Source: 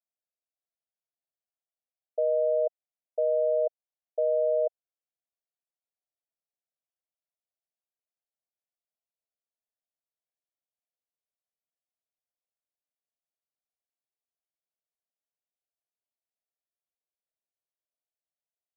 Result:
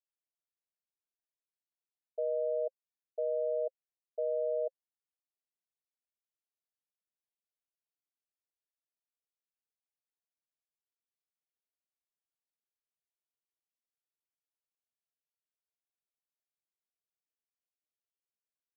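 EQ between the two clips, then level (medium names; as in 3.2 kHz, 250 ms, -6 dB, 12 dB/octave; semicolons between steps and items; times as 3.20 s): vowel filter e; static phaser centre 540 Hz, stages 6; +9.0 dB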